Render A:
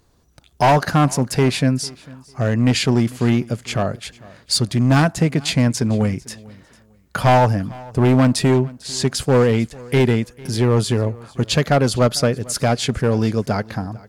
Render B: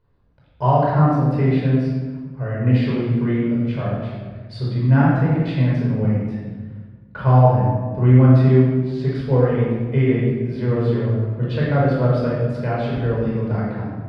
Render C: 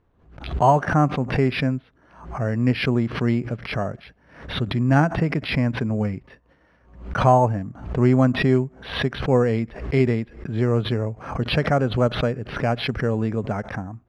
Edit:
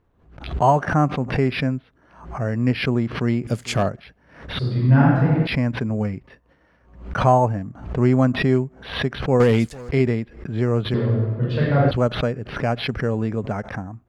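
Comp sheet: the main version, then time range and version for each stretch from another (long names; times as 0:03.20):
C
0:03.47–0:03.89: punch in from A
0:04.59–0:05.47: punch in from B
0:09.40–0:09.89: punch in from A
0:10.94–0:11.91: punch in from B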